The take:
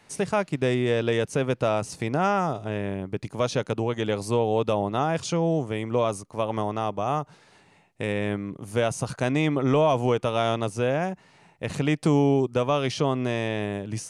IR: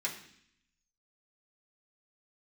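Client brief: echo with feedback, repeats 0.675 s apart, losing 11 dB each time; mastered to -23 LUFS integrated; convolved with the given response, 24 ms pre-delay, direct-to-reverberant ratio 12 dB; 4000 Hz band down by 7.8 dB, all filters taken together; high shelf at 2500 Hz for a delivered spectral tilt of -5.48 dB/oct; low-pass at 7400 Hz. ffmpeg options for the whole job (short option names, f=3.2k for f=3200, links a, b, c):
-filter_complex "[0:a]lowpass=7.4k,highshelf=f=2.5k:g=-5.5,equalizer=f=4k:t=o:g=-5.5,aecho=1:1:675|1350|2025:0.282|0.0789|0.0221,asplit=2[a][b];[1:a]atrim=start_sample=2205,adelay=24[c];[b][c]afir=irnorm=-1:irlink=0,volume=-15.5dB[d];[a][d]amix=inputs=2:normalize=0,volume=3dB"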